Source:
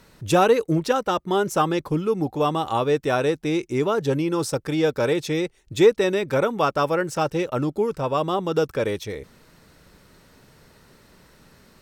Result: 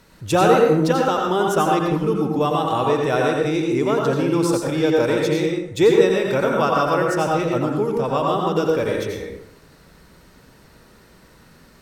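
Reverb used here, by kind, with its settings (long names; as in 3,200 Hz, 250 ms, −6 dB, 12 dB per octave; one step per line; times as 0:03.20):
dense smooth reverb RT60 0.81 s, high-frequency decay 0.55×, pre-delay 75 ms, DRR −0.5 dB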